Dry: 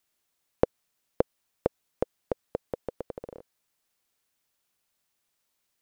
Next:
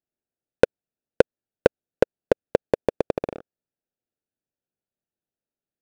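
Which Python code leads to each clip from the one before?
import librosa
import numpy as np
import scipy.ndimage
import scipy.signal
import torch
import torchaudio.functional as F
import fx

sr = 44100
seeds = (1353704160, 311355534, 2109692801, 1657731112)

y = fx.wiener(x, sr, points=41)
y = fx.low_shelf(y, sr, hz=89.0, db=-7.5)
y = fx.leveller(y, sr, passes=3)
y = y * librosa.db_to_amplitude(4.0)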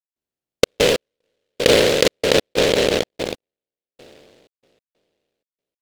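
y = fx.spec_trails(x, sr, decay_s=2.25)
y = fx.step_gate(y, sr, bpm=94, pattern='.xxx.x....xxx.x', floor_db=-60.0, edge_ms=4.5)
y = fx.noise_mod_delay(y, sr, seeds[0], noise_hz=2800.0, depth_ms=0.15)
y = y * librosa.db_to_amplitude(-1.0)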